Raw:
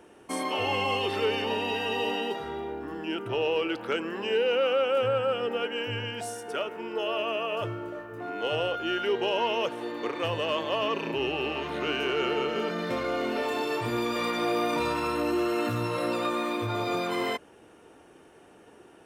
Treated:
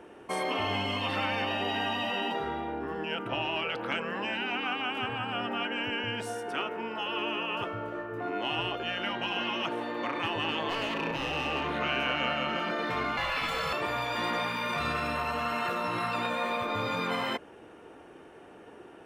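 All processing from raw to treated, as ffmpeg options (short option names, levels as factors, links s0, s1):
-filter_complex "[0:a]asettb=1/sr,asplit=3[s0][s1][s2];[s0]atrim=end=10.694[s3];[s1]atrim=start=10.69:end=11.73,asetpts=PTS-STARTPTS,afade=t=in:d=0.004:c=qsin,afade=t=out:st=1.036:d=0.004:c=qsin,bandreject=f=630:w=15,asoftclip=type=hard:threshold=0.0398,asplit=2[s4][s5];[s5]adelay=26,volume=0.282[s6];[s4][s6]amix=inputs=2:normalize=0,atrim=end_sample=45864[s7];[s2]atrim=start=11.726[s8];[s3][s7]acrossfade=d=0.004:c1=hsin:c2=qsin[s9];[s9][s8]acrossfade=d=0.004:c1=qsin:c2=hsin,asettb=1/sr,asplit=3[s10][s11][s12];[s10]atrim=end=13.174[s13];[s11]atrim=start=13.17:end=13.73,asetpts=PTS-STARTPTS,afade=t=in:d=0.004:c=qsin,afade=t=out:st=0.556:d=0.004:c=qsin,afreqshift=-69,bandreject=f=50:t=h:w=6,bandreject=f=100:t=h:w=6,bandreject=f=150:t=h:w=6,acontrast=53[s14];[s12]atrim=start=13.726[s15];[s13][s14]acrossfade=d=0.004:c1=hsin:c2=qsin[s16];[s16][s15]acrossfade=d=0.004:c1=qsin:c2=hsin,afftfilt=real='re*lt(hypot(re,im),0.126)':imag='im*lt(hypot(re,im),0.126)':win_size=1024:overlap=0.75,bass=f=250:g=-2,treble=f=4000:g=-10,volume=1.58"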